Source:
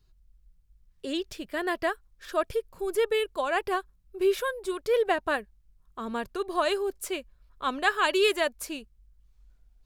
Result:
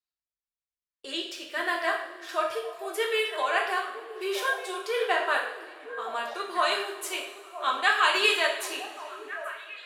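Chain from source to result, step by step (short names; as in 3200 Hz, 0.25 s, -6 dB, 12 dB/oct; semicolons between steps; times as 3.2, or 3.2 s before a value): weighting filter A; delay with a stepping band-pass 0.484 s, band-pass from 240 Hz, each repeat 1.4 oct, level -7 dB; two-slope reverb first 0.59 s, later 2.8 s, from -18 dB, DRR -1.5 dB; gate with hold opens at -35 dBFS; bell 180 Hz -14 dB 1.8 oct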